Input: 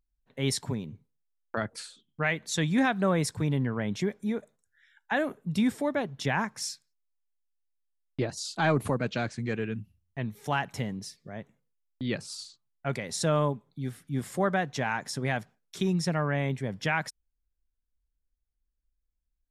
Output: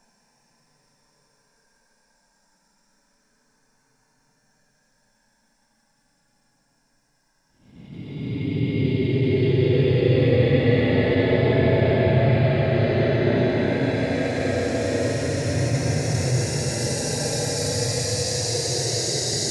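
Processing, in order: two-slope reverb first 0.91 s, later 2.8 s, from -19 dB, DRR -6.5 dB; Paulstretch 43×, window 0.05 s, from 7.99 s; attacks held to a fixed rise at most 140 dB/s; trim +4 dB

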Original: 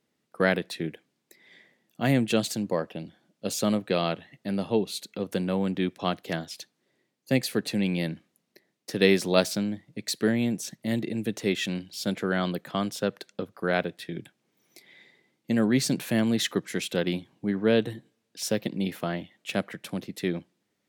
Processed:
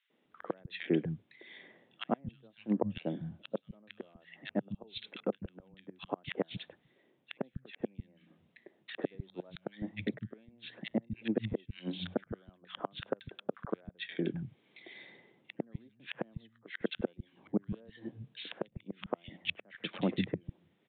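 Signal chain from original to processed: inverted gate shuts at -20 dBFS, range -39 dB; three bands offset in time highs, mids, lows 100/250 ms, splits 170/1500 Hz; resampled via 8 kHz; trim +4.5 dB

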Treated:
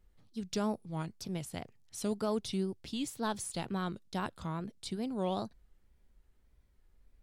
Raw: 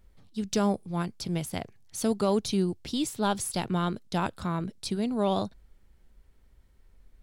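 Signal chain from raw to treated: wow and flutter 140 cents; trim -7.5 dB

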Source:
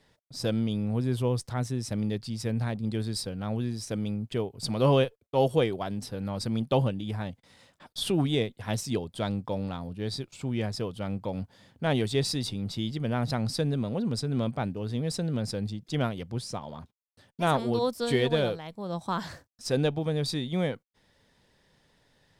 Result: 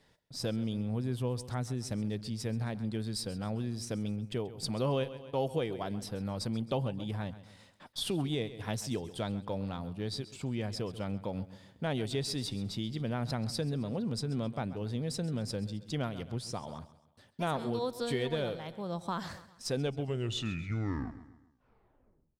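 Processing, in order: tape stop on the ending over 2.67 s; feedback delay 133 ms, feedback 42%, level -17 dB; compression 2:1, threshold -31 dBFS, peak gain reduction 7.5 dB; trim -2 dB

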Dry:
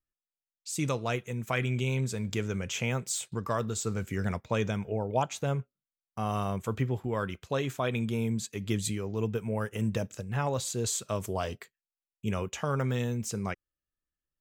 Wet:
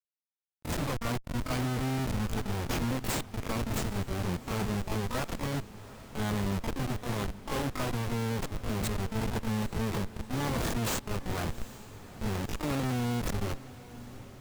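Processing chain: Schmitt trigger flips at -29.5 dBFS; harmony voices +12 st -2 dB; echo that smears into a reverb 803 ms, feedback 60%, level -16 dB

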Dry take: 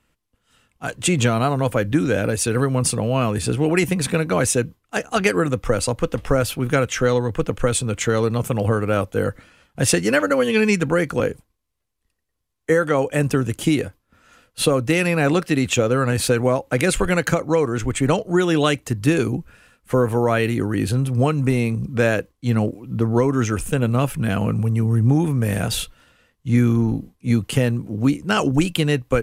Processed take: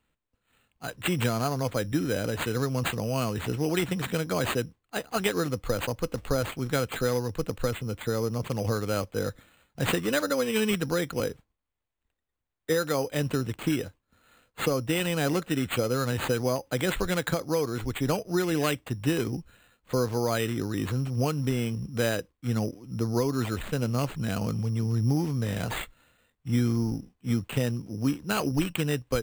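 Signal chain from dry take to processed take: 7.71–8.44 s: treble shelf 2.2 kHz -10 dB; careless resampling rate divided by 8×, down none, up hold; trim -8.5 dB

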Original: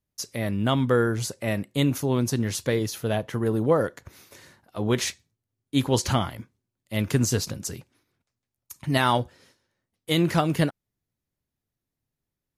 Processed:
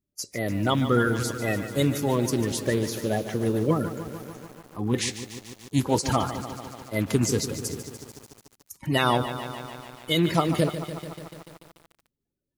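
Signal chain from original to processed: coarse spectral quantiser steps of 30 dB; 3.71–4.94 s: ten-band graphic EQ 250 Hz +4 dB, 500 Hz -11 dB, 2 kHz -8 dB, 4 kHz -11 dB; bit-crushed delay 146 ms, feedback 80%, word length 7-bit, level -11 dB

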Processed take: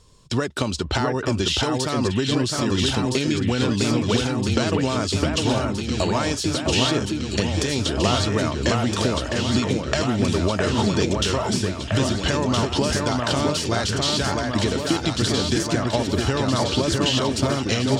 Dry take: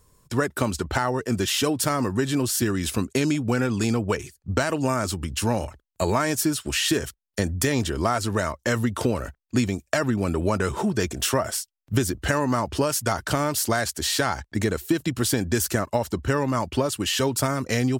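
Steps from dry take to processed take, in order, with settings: resonant high shelf 2.5 kHz +8 dB, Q 1.5; compression 4:1, threshold -24 dBFS, peak gain reduction 10.5 dB; distance through air 110 m; echo whose repeats swap between lows and highs 658 ms, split 2.3 kHz, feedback 82%, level -2.5 dB; trim +5.5 dB

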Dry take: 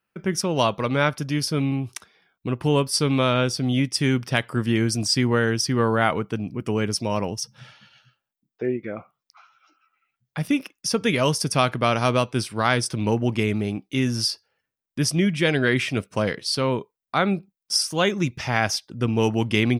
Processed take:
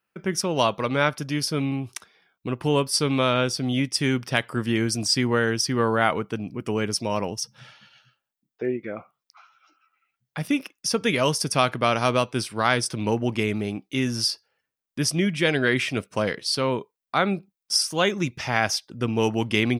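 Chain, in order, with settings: bass shelf 180 Hz -6 dB

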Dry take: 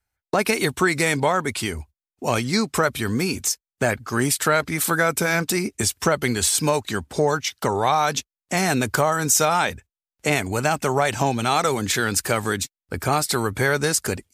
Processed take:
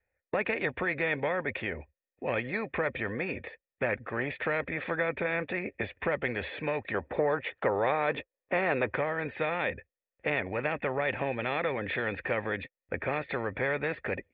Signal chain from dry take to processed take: cascade formant filter e; 6.94–8.94 s: high-order bell 670 Hz +8 dB 2.4 oct; spectrum-flattening compressor 2:1; trim -2 dB

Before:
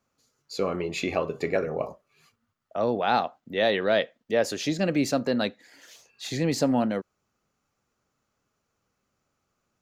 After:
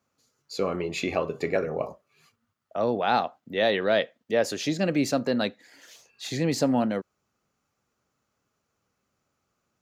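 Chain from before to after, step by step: high-pass 49 Hz

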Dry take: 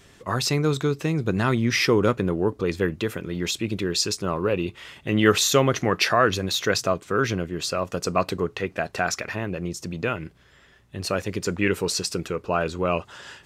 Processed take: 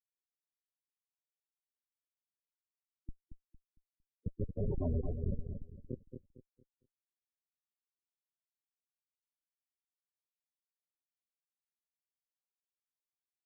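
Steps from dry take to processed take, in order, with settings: reverse the whole clip; Doppler pass-by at 4.72 s, 29 m/s, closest 2.9 m; bass shelf 410 Hz +5.5 dB; waveshaping leveller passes 3; in parallel at +2 dB: peak limiter -20 dBFS, peak gain reduction 10 dB; on the sum: one-sided clip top -32 dBFS, bottom -10 dBFS; feedback comb 82 Hz, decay 0.17 s, harmonics odd, mix 70%; Schmitt trigger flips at -25.5 dBFS; on a send: feedback delay 228 ms, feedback 31%, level -7 dB; on the sum: loudest bins only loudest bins 16; trim +5 dB

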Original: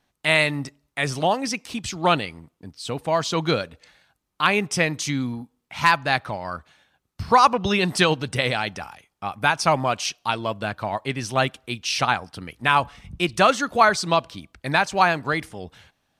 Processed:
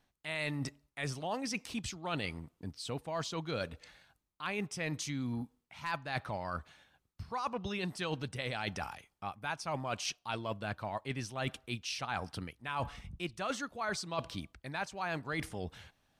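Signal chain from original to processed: bass shelf 81 Hz +7 dB; reverse; compression 12:1, threshold -30 dBFS, peak gain reduction 20 dB; reverse; trim -3.5 dB

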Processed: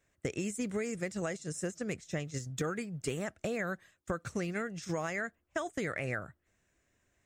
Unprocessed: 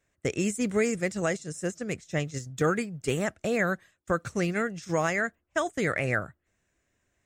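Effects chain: compression, threshold -32 dBFS, peak gain reduction 11.5 dB

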